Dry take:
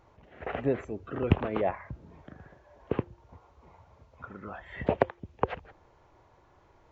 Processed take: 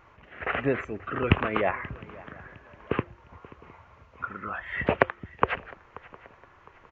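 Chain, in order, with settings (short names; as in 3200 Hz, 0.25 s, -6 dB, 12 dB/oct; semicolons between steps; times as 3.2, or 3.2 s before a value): band shelf 1800 Hz +10 dB; swung echo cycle 0.709 s, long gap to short 3:1, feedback 33%, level -21 dB; downsampling 16000 Hz; gain +1.5 dB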